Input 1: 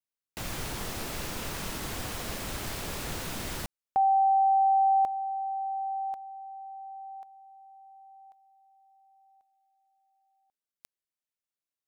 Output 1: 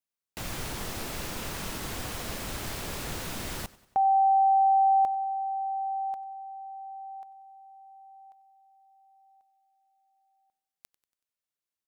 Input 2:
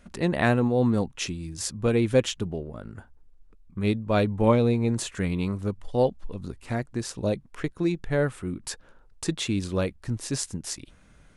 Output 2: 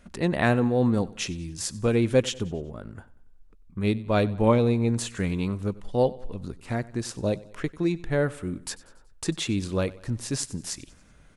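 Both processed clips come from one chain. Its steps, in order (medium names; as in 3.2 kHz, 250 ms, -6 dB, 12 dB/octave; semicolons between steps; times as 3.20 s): feedback delay 94 ms, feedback 51%, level -20.5 dB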